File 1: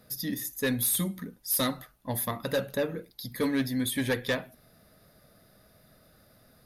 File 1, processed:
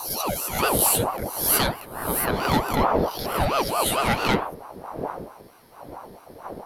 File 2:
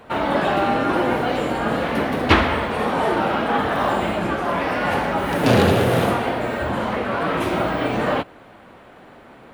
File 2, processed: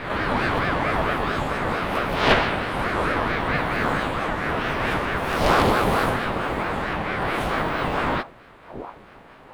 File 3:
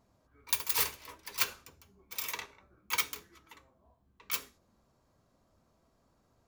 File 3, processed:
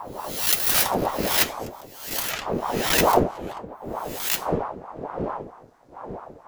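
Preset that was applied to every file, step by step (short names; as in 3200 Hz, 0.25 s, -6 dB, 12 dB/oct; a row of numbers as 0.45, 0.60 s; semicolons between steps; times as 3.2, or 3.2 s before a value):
spectral swells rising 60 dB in 0.67 s; wind noise 220 Hz -35 dBFS; ring modulator with a swept carrier 630 Hz, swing 55%, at 4.5 Hz; match loudness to -23 LUFS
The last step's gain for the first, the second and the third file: +6.5, -2.0, +9.0 dB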